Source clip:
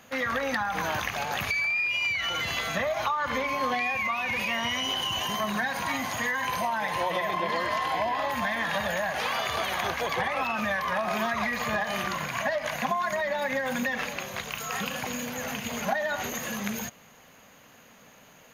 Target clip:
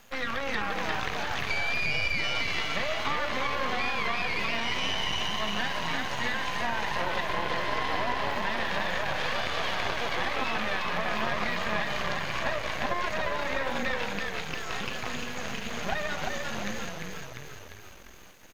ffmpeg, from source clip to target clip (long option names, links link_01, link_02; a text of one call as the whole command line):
ffmpeg -i in.wav -filter_complex "[0:a]highshelf=frequency=4300:gain=10,asplit=9[link_01][link_02][link_03][link_04][link_05][link_06][link_07][link_08][link_09];[link_02]adelay=348,afreqshift=-40,volume=-3.5dB[link_10];[link_03]adelay=696,afreqshift=-80,volume=-8.5dB[link_11];[link_04]adelay=1044,afreqshift=-120,volume=-13.6dB[link_12];[link_05]adelay=1392,afreqshift=-160,volume=-18.6dB[link_13];[link_06]adelay=1740,afreqshift=-200,volume=-23.6dB[link_14];[link_07]adelay=2088,afreqshift=-240,volume=-28.7dB[link_15];[link_08]adelay=2436,afreqshift=-280,volume=-33.7dB[link_16];[link_09]adelay=2784,afreqshift=-320,volume=-38.8dB[link_17];[link_01][link_10][link_11][link_12][link_13][link_14][link_15][link_16][link_17]amix=inputs=9:normalize=0,aeval=exprs='max(val(0),0)':channel_layout=same,acrossover=split=4900[link_18][link_19];[link_19]acompressor=threshold=-60dB:ratio=4:attack=1:release=60[link_20];[link_18][link_20]amix=inputs=2:normalize=0" out.wav